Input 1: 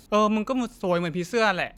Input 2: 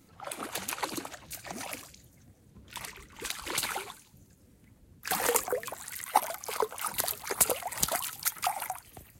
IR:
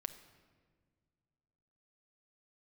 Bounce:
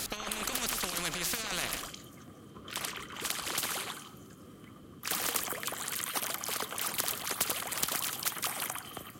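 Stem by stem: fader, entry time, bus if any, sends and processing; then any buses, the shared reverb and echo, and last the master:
+2.5 dB, 0.00 s, no send, echo send -17.5 dB, negative-ratio compressor -27 dBFS, ratio -0.5
-3.5 dB, 0.00 s, send -12.5 dB, no echo send, HPF 220 Hz 12 dB/oct; tilt shelf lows +7 dB, about 1200 Hz; small resonant body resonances 1200/3100 Hz, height 16 dB, ringing for 20 ms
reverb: on, RT60 1.8 s, pre-delay 6 ms
echo: echo 0.105 s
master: bell 580 Hz -6.5 dB 1.4 oct; notch 900 Hz, Q 5.2; spectral compressor 4:1

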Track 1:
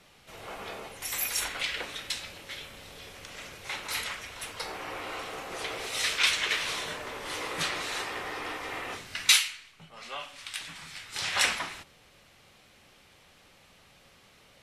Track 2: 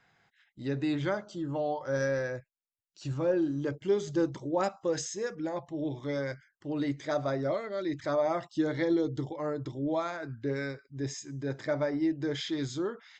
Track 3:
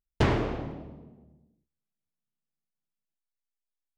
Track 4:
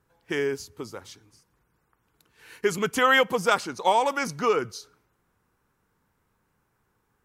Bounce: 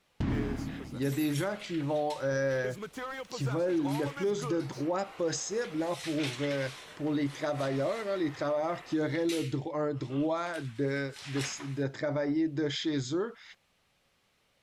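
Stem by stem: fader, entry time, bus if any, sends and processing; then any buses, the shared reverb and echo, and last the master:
-13.0 dB, 0.00 s, no send, dry
+2.0 dB, 0.35 s, no send, upward compressor, threshold -41 dBFS
-9.5 dB, 0.00 s, no send, resonant low shelf 340 Hz +7.5 dB, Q 3
-12.0 dB, 0.00 s, no send, compressor, threshold -23 dBFS, peak gain reduction 8 dB; slew limiter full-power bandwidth 88 Hz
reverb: off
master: limiter -22.5 dBFS, peak gain reduction 9.5 dB

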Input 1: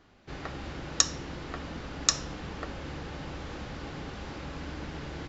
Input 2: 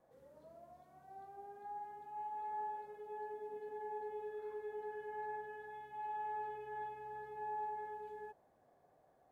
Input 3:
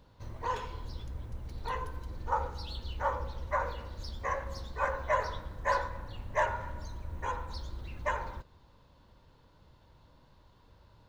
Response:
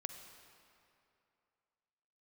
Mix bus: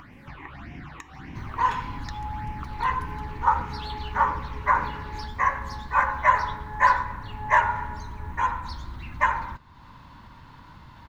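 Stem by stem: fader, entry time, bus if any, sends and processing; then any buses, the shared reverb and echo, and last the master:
+0.5 dB, 0.00 s, no send, LPF 2300 Hz 6 dB/oct; compressor 6:1, threshold -40 dBFS, peak gain reduction 16 dB; phaser stages 8, 1.7 Hz, lowest notch 180–1300 Hz
-1.5 dB, 0.00 s, no send, comb 6.9 ms, depth 95%; cascading phaser falling 1.1 Hz
+2.5 dB, 1.15 s, no send, dry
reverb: off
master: graphic EQ 125/250/500/1000/2000 Hz +4/+7/-11/+10/+8 dB; upward compressor, threshold -38 dBFS

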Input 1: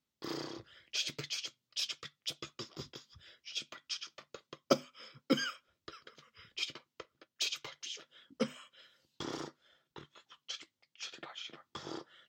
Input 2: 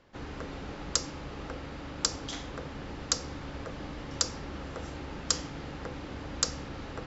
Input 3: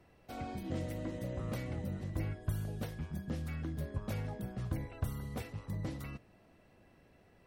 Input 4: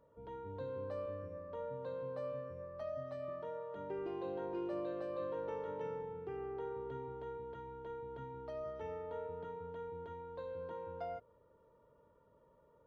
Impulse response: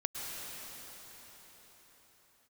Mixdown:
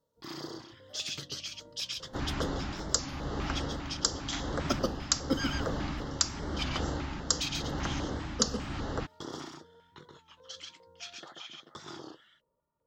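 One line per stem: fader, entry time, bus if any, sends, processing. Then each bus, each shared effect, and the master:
0.0 dB, 0.00 s, no send, echo send -3.5 dB, dry
+2.5 dB, 2.00 s, no send, no echo send, vocal rider within 5 dB 0.5 s
-19.0 dB, 0.60 s, no send, no echo send, dry
-12.5 dB, 0.00 s, no send, no echo send, dry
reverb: off
echo: echo 0.135 s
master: LFO notch square 2.5 Hz 480–2400 Hz; record warp 33 1/3 rpm, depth 100 cents

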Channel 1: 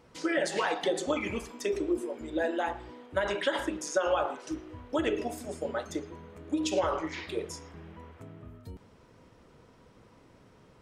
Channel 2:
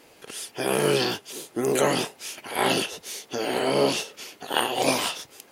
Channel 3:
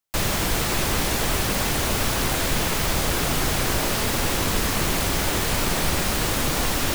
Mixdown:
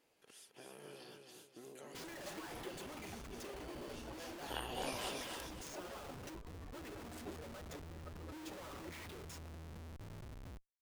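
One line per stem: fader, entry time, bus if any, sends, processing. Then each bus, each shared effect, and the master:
-1.5 dB, 1.80 s, no send, no echo send, bell 490 Hz -10 dB 2 oct; compressor 6:1, threshold -43 dBFS, peak gain reduction 13 dB; Schmitt trigger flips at -49.5 dBFS
3.88 s -22.5 dB -> 4.58 s -10 dB, 0.00 s, no send, echo send -5 dB, compressor 3:1, threshold -32 dBFS, peak gain reduction 11.5 dB
-16.0 dB, 1.95 s, no send, no echo send, spectral contrast raised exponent 3; Chebyshev high-pass 310 Hz, order 6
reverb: off
echo: feedback echo 0.267 s, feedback 32%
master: dry

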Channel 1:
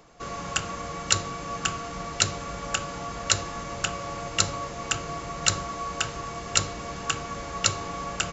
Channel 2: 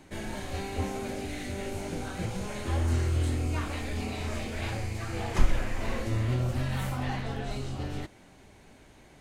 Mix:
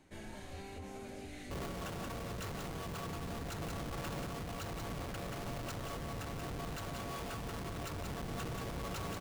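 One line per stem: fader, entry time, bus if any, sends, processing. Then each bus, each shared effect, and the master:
-2.5 dB, 1.30 s, no send, echo send -4.5 dB, high shelf 4900 Hz -8.5 dB; Schmitt trigger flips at -33.5 dBFS
-11.0 dB, 0.00 s, muted 3.61–4.3, no send, no echo send, compressor, threshold -29 dBFS, peak gain reduction 15 dB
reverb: off
echo: echo 0.182 s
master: limiter -36.5 dBFS, peak gain reduction 10.5 dB

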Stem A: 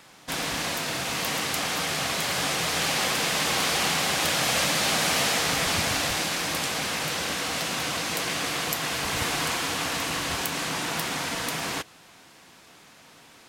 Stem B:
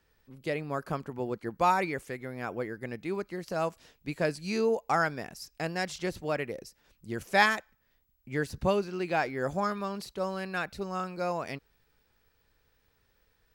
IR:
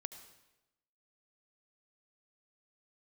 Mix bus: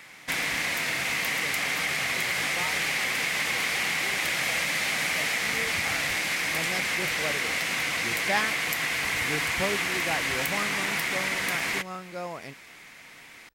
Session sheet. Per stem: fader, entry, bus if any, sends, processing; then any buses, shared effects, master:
-2.0 dB, 0.00 s, no send, bell 2100 Hz +14 dB 0.64 oct; compressor, threshold -23 dBFS, peak gain reduction 8 dB
5.93 s -13.5 dB -> 6.42 s -4 dB, 0.95 s, no send, dry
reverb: off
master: high shelf 7500 Hz +4.5 dB

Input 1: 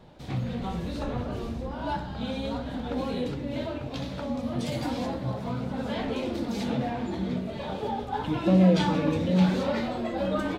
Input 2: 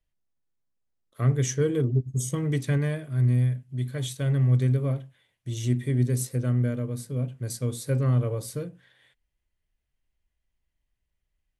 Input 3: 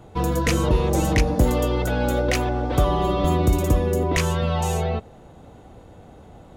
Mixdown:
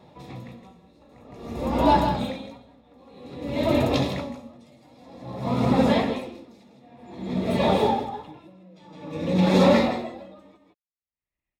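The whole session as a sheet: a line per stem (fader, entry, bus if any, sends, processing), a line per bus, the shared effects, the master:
+2.0 dB, 0.00 s, no bus, no send, echo send -5 dB, limiter -20.5 dBFS, peak gain reduction 10 dB
-10.0 dB, 0.00 s, bus A, no send, no echo send, minimum comb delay 3.2 ms
-18.0 dB, 0.00 s, bus A, no send, echo send -5 dB, dry
bus A: 0.0 dB, resonant high shelf 3400 Hz -10.5 dB, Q 1.5; compressor, threshold -34 dBFS, peak gain reduction 5 dB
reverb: off
echo: echo 0.161 s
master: AGC gain up to 11.5 dB; notch comb 1500 Hz; dB-linear tremolo 0.52 Hz, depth 36 dB

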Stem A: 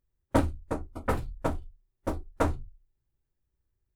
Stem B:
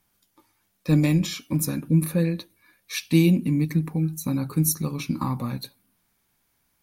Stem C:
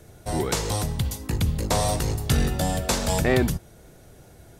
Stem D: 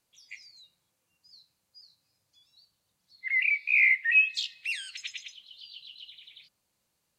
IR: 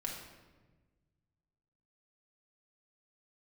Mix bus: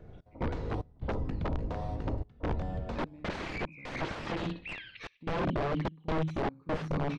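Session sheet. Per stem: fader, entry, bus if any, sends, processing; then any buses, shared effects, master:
-5.0 dB, 0.00 s, send -9 dB, echo send -6.5 dB, steep low-pass 1100 Hz 36 dB/oct
+2.5 dB, 2.10 s, no send, echo send -6 dB, compressor 3:1, threshold -27 dBFS, peak gain reduction 10.5 dB
-4.5 dB, 0.00 s, send -4 dB, no echo send, octaver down 1 oct, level -6 dB; compressor 5:1, threshold -31 dBFS, peak gain reduction 14.5 dB
+2.5 dB, 0.00 s, send -17.5 dB, echo send -6 dB, LPF 4200 Hz 24 dB/oct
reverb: on, RT60 1.3 s, pre-delay 4 ms
echo: feedback echo 63 ms, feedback 22%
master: step gate "x.xx.xxxxxx.xx" 74 bpm -24 dB; wrapped overs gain 22 dB; tape spacing loss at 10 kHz 44 dB

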